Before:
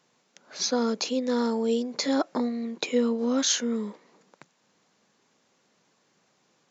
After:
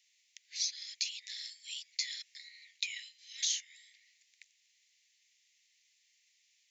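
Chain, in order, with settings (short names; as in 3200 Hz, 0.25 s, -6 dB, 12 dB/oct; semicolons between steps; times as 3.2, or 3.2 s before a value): steep high-pass 1900 Hz 96 dB/oct; compressor 3:1, threshold -32 dBFS, peak gain reduction 9 dB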